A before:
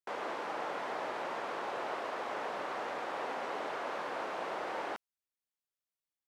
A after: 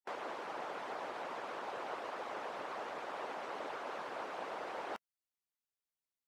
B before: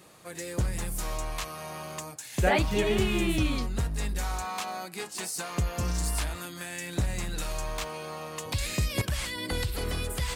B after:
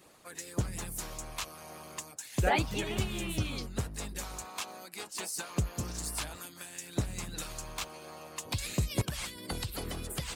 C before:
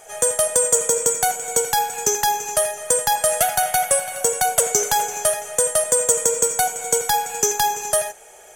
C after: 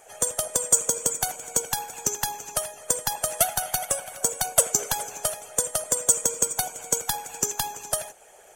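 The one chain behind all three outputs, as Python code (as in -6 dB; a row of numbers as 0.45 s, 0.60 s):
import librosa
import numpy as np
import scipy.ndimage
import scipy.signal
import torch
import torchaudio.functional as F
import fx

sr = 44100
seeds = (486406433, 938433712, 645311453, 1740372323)

y = fx.dynamic_eq(x, sr, hz=1900.0, q=3.5, threshold_db=-47.0, ratio=4.0, max_db=-4)
y = fx.hpss(y, sr, part='harmonic', gain_db=-14)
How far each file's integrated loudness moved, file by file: -4.5 LU, -5.0 LU, -6.0 LU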